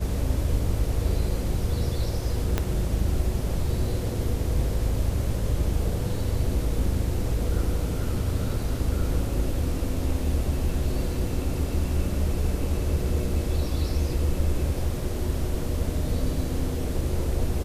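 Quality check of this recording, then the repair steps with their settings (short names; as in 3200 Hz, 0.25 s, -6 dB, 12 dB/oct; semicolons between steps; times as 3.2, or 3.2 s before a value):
2.58 pop -10 dBFS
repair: de-click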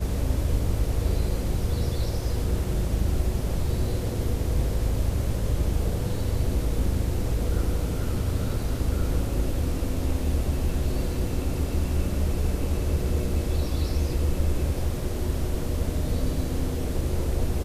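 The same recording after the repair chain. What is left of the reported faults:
2.58 pop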